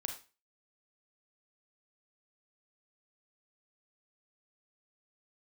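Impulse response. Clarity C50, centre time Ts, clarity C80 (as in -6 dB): 8.0 dB, 17 ms, 13.5 dB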